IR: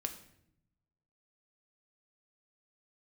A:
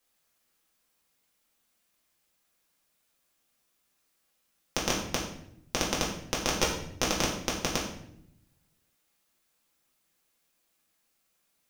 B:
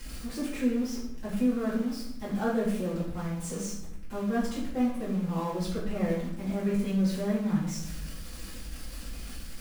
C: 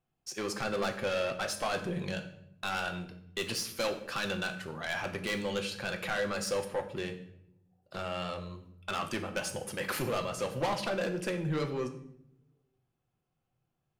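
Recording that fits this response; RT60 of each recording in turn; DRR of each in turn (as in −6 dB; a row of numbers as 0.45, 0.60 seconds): C; 0.70, 0.70, 0.75 seconds; −4.5, −10.0, 5.5 decibels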